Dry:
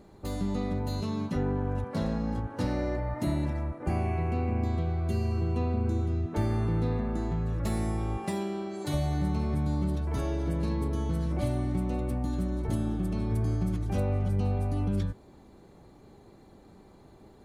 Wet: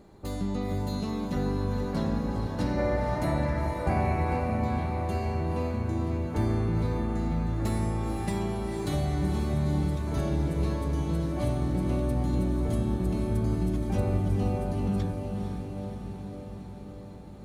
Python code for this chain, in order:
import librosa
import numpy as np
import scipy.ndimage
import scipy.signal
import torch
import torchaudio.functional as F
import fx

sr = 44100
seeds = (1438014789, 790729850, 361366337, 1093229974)

y = fx.spec_box(x, sr, start_s=2.78, length_s=1.62, low_hz=410.0, high_hz=2400.0, gain_db=6)
y = fx.echo_diffused(y, sr, ms=481, feedback_pct=69, wet_db=-5.5)